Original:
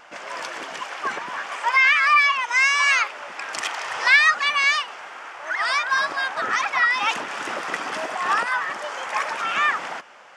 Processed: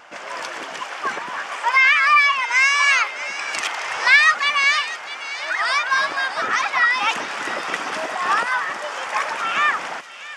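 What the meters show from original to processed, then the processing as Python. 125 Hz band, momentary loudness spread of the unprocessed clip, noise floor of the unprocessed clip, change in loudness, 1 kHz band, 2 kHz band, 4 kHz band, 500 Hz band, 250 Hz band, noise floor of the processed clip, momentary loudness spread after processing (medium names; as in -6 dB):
no reading, 17 LU, -40 dBFS, +2.0 dB, +2.0 dB, +2.0 dB, +2.5 dB, +2.0 dB, +2.0 dB, -35 dBFS, 15 LU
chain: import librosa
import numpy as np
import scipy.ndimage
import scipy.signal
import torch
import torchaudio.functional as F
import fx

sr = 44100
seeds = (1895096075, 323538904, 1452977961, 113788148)

p1 = scipy.signal.sosfilt(scipy.signal.butter(2, 42.0, 'highpass', fs=sr, output='sos'), x)
p2 = p1 + fx.echo_wet_highpass(p1, sr, ms=646, feedback_pct=61, hz=2500.0, wet_db=-10.0, dry=0)
y = p2 * 10.0 ** (2.0 / 20.0)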